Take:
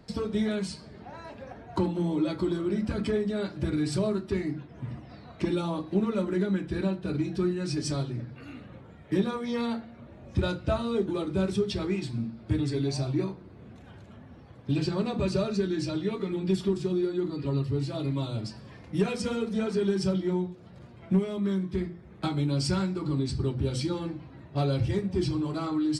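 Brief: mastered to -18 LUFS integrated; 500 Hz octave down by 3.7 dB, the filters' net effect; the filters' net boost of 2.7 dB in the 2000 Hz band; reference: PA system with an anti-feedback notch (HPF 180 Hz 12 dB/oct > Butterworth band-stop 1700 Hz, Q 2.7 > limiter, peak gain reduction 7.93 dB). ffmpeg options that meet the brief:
-af "highpass=180,asuperstop=centerf=1700:order=8:qfactor=2.7,equalizer=f=500:t=o:g=-5.5,equalizer=f=2k:t=o:g=9,volume=16.5dB,alimiter=limit=-8dB:level=0:latency=1"

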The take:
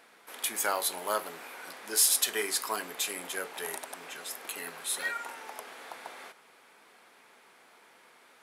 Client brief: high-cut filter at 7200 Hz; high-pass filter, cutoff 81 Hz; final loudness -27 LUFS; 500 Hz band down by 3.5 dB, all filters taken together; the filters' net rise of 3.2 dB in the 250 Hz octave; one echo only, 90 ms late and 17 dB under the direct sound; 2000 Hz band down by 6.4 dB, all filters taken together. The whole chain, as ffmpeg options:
-af "highpass=81,lowpass=7.2k,equalizer=f=250:t=o:g=7,equalizer=f=500:t=o:g=-6,equalizer=f=2k:t=o:g=-8,aecho=1:1:90:0.141,volume=9dB"

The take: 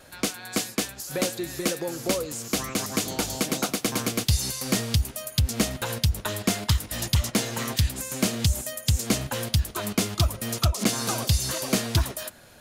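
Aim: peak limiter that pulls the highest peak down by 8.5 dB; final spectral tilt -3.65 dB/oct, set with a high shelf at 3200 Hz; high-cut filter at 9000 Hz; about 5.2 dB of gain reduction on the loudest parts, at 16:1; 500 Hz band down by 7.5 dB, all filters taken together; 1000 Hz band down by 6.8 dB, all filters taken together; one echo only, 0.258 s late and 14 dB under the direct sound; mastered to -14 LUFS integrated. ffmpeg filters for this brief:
-af "lowpass=9k,equalizer=f=500:t=o:g=-8,equalizer=f=1k:t=o:g=-7,highshelf=f=3.2k:g=3,acompressor=threshold=-22dB:ratio=16,alimiter=limit=-18.5dB:level=0:latency=1,aecho=1:1:258:0.2,volume=17dB"

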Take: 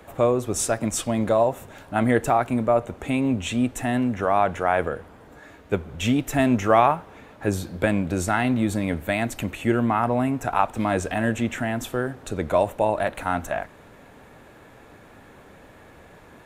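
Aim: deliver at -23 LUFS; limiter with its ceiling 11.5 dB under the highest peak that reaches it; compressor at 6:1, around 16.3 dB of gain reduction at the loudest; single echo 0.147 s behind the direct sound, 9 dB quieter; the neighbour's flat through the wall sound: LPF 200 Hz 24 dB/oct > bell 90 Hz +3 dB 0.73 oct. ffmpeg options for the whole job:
-af "acompressor=threshold=-30dB:ratio=6,alimiter=level_in=3.5dB:limit=-24dB:level=0:latency=1,volume=-3.5dB,lowpass=f=200:w=0.5412,lowpass=f=200:w=1.3066,equalizer=f=90:t=o:w=0.73:g=3,aecho=1:1:147:0.355,volume=21dB"

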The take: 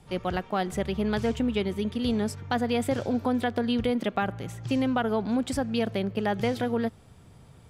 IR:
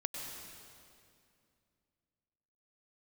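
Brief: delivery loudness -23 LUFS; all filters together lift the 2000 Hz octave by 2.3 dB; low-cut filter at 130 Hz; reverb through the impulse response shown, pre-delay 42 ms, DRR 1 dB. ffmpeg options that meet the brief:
-filter_complex "[0:a]highpass=130,equalizer=f=2k:t=o:g=3,asplit=2[a][b];[1:a]atrim=start_sample=2205,adelay=42[c];[b][c]afir=irnorm=-1:irlink=0,volume=-2dB[d];[a][d]amix=inputs=2:normalize=0,volume=2.5dB"

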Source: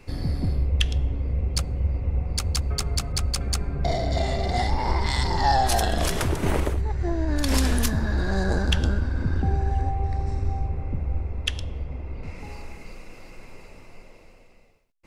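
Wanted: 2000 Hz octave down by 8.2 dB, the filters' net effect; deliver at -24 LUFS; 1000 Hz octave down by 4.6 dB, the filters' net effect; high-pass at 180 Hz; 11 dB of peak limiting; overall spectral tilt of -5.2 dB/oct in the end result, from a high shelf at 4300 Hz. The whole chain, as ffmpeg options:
-af "highpass=180,equalizer=f=1k:t=o:g=-5,equalizer=f=2k:t=o:g=-8,highshelf=f=4.3k:g=-4.5,volume=11dB,alimiter=limit=-12.5dB:level=0:latency=1"

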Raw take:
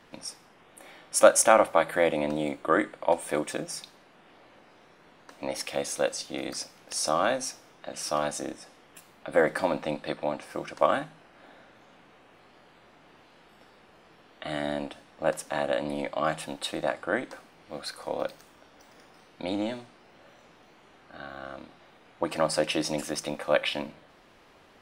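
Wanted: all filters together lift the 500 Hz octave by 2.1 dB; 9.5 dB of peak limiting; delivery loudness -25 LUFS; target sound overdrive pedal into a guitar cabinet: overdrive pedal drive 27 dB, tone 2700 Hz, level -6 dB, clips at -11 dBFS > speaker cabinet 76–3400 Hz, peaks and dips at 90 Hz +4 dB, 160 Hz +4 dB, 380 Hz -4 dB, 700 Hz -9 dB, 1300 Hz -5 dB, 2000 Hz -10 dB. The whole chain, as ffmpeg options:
-filter_complex "[0:a]equalizer=f=500:t=o:g=6,alimiter=limit=-11dB:level=0:latency=1,asplit=2[a][b];[b]highpass=f=720:p=1,volume=27dB,asoftclip=type=tanh:threshold=-11dB[c];[a][c]amix=inputs=2:normalize=0,lowpass=f=2.7k:p=1,volume=-6dB,highpass=76,equalizer=f=90:t=q:w=4:g=4,equalizer=f=160:t=q:w=4:g=4,equalizer=f=380:t=q:w=4:g=-4,equalizer=f=700:t=q:w=4:g=-9,equalizer=f=1.3k:t=q:w=4:g=-5,equalizer=f=2k:t=q:w=4:g=-10,lowpass=f=3.4k:w=0.5412,lowpass=f=3.4k:w=1.3066"

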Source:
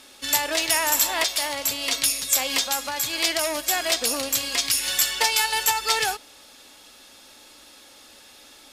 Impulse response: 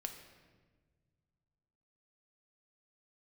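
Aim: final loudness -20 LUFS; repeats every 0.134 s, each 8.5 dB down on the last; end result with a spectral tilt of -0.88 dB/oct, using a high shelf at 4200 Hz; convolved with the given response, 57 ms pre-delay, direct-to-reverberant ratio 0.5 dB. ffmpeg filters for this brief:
-filter_complex "[0:a]highshelf=f=4.2k:g=-6,aecho=1:1:134|268|402|536:0.376|0.143|0.0543|0.0206,asplit=2[a][b];[1:a]atrim=start_sample=2205,adelay=57[c];[b][c]afir=irnorm=-1:irlink=0,volume=1.5dB[d];[a][d]amix=inputs=2:normalize=0,volume=1.5dB"

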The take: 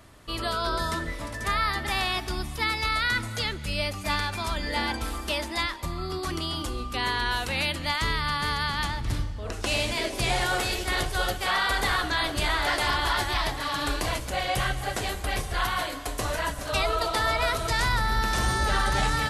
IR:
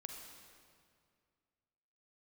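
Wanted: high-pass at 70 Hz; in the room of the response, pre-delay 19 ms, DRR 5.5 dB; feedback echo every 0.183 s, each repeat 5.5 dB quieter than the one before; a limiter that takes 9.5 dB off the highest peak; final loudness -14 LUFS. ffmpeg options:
-filter_complex "[0:a]highpass=70,alimiter=limit=-22.5dB:level=0:latency=1,aecho=1:1:183|366|549|732|915|1098|1281:0.531|0.281|0.149|0.079|0.0419|0.0222|0.0118,asplit=2[a][b];[1:a]atrim=start_sample=2205,adelay=19[c];[b][c]afir=irnorm=-1:irlink=0,volume=-2dB[d];[a][d]amix=inputs=2:normalize=0,volume=15dB"

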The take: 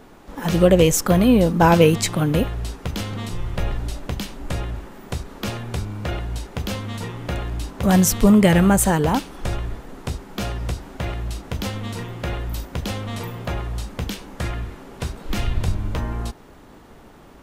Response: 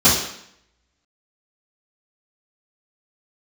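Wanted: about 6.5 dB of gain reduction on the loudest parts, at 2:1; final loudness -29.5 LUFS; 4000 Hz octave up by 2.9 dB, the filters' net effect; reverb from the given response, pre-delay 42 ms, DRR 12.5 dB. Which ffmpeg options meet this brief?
-filter_complex "[0:a]equalizer=f=4k:t=o:g=4,acompressor=threshold=-21dB:ratio=2,asplit=2[a][b];[1:a]atrim=start_sample=2205,adelay=42[c];[b][c]afir=irnorm=-1:irlink=0,volume=-35dB[d];[a][d]amix=inputs=2:normalize=0,volume=-4dB"

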